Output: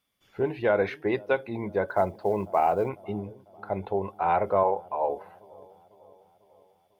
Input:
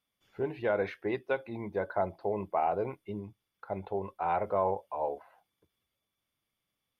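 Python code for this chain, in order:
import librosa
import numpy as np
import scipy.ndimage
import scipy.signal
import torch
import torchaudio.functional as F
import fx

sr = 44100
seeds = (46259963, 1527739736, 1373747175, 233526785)

y = fx.quant_companded(x, sr, bits=8, at=(1.88, 2.89))
y = fx.bass_treble(y, sr, bass_db=-12, treble_db=-4, at=(4.63, 5.1))
y = fx.echo_wet_lowpass(y, sr, ms=498, feedback_pct=56, hz=690.0, wet_db=-21)
y = F.gain(torch.from_numpy(y), 6.0).numpy()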